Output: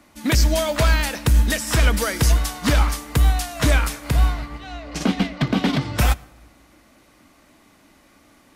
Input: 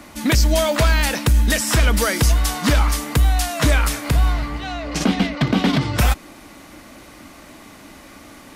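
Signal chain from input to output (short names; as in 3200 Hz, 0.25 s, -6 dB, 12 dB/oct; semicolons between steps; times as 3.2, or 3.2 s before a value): on a send at -15.5 dB: reverb RT60 1.3 s, pre-delay 68 ms; on the sum: upward expander 1.5:1, over -35 dBFS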